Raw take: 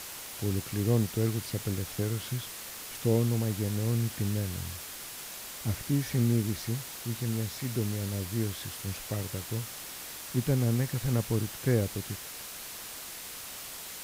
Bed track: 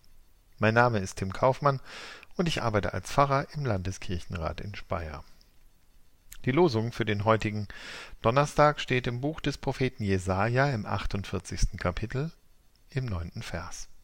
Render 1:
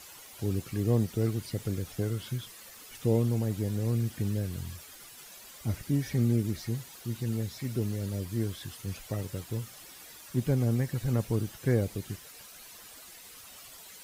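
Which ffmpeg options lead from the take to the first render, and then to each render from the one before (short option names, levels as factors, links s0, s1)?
-af "afftdn=nr=11:nf=-43"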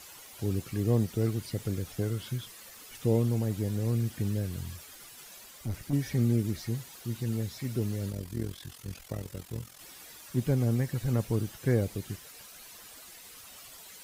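-filter_complex "[0:a]asettb=1/sr,asplit=3[s0][s1][s2];[s0]atrim=end=5.454[s3];[s1]atrim=start=5.45:end=5.93,asetpts=PTS-STARTPTS,afade=t=in:d=0.004:c=qsin,afade=t=out:st=0.476:d=0.004:c=qsin,aeval=exprs='(tanh(22.4*val(0)+0.4)-tanh(0.4))/22.4':c=same[s4];[s2]atrim=start=5.926[s5];[s3][s4]acrossfade=d=0.004:c1=hsin:c2=qsin[s6];[s6][s5]acrossfade=d=0.004:c1=qsin:c2=hsin,asplit=3[s7][s8][s9];[s7]afade=t=out:st=8.1:d=0.02[s10];[s8]tremolo=f=43:d=0.788,afade=t=in:st=8.1:d=0.02,afade=t=out:st=9.79:d=0.02[s11];[s9]afade=t=in:st=9.79:d=0.02[s12];[s10][s11][s12]amix=inputs=3:normalize=0"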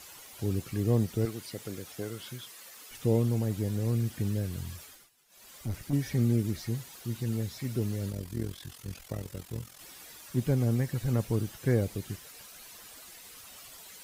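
-filter_complex "[0:a]asettb=1/sr,asplit=3[s0][s1][s2];[s0]atrim=end=1.254[s3];[s1]atrim=start=1.25:end=2.91,asetpts=PTS-STARTPTS,afade=t=in:d=0.004:c=qsin,afade=t=out:st=1.656:d=0.004:c=qsin,highpass=f=380:p=1[s4];[s2]atrim=start=2.906[s5];[s3][s4]acrossfade=d=0.004:c1=hsin:c2=qsin[s6];[s6][s5]acrossfade=d=0.004:c1=qsin:c2=hsin,asplit=3[s7][s8][s9];[s7]atrim=end=5.1,asetpts=PTS-STARTPTS,afade=t=out:st=4.84:d=0.26:silence=0.112202[s10];[s8]atrim=start=5.1:end=5.28,asetpts=PTS-STARTPTS,volume=0.112[s11];[s9]atrim=start=5.28,asetpts=PTS-STARTPTS,afade=t=in:d=0.26:silence=0.112202[s12];[s10][s11][s12]concat=n=3:v=0:a=1"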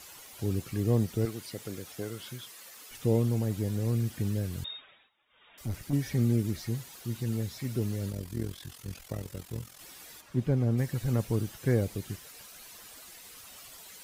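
-filter_complex "[0:a]asettb=1/sr,asplit=3[s0][s1][s2];[s0]atrim=end=4.644[s3];[s1]atrim=start=4.64:end=5.58,asetpts=PTS-STARTPTS,afade=t=in:d=0.004:c=qsin,afade=t=out:st=0.936:d=0.004:c=qsin,lowpass=f=3200:t=q:w=0.5098,lowpass=f=3200:t=q:w=0.6013,lowpass=f=3200:t=q:w=0.9,lowpass=f=3200:t=q:w=2.563,afreqshift=-3800[s4];[s2]atrim=start=5.576[s5];[s3][s4]acrossfade=d=0.004:c1=hsin:c2=qsin[s6];[s6][s5]acrossfade=d=0.004:c1=qsin:c2=hsin,asplit=3[s7][s8][s9];[s7]afade=t=out:st=10.2:d=0.02[s10];[s8]lowpass=f=2100:p=1,afade=t=in:st=10.2:d=0.02,afade=t=out:st=10.77:d=0.02[s11];[s9]afade=t=in:st=10.77:d=0.02[s12];[s10][s11][s12]amix=inputs=3:normalize=0"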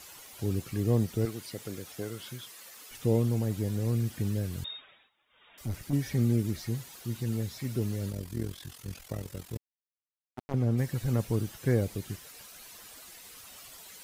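-filter_complex "[0:a]asettb=1/sr,asplit=3[s0][s1][s2];[s0]atrim=end=9.574[s3];[s1]atrim=start=9.57:end=10.54,asetpts=PTS-STARTPTS,afade=t=in:d=0.004:c=qsin,afade=t=out:st=0.966:d=0.004:c=qsin,acrusher=bits=2:mix=0:aa=0.5[s4];[s2]atrim=start=10.536[s5];[s3][s4]acrossfade=d=0.004:c1=hsin:c2=qsin[s6];[s6][s5]acrossfade=d=0.004:c1=qsin:c2=hsin"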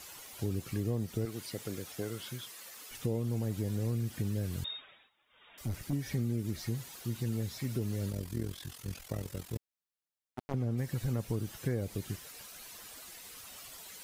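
-af "acompressor=threshold=0.0316:ratio=5"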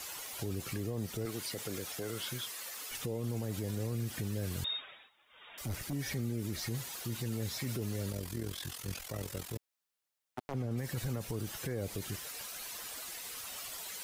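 -filter_complex "[0:a]acrossover=split=390[s0][s1];[s1]acontrast=38[s2];[s0][s2]amix=inputs=2:normalize=0,alimiter=level_in=1.68:limit=0.0631:level=0:latency=1:release=19,volume=0.596"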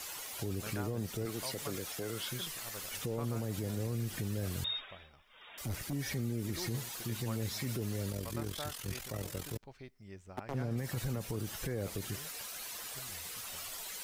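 -filter_complex "[1:a]volume=0.0708[s0];[0:a][s0]amix=inputs=2:normalize=0"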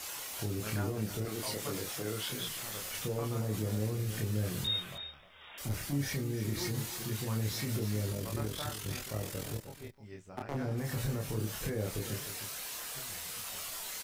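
-filter_complex "[0:a]asplit=2[s0][s1];[s1]adelay=28,volume=0.75[s2];[s0][s2]amix=inputs=2:normalize=0,asplit=2[s3][s4];[s4]aecho=0:1:308:0.266[s5];[s3][s5]amix=inputs=2:normalize=0"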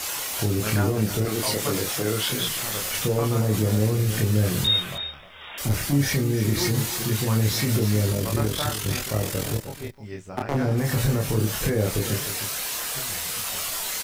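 -af "volume=3.98"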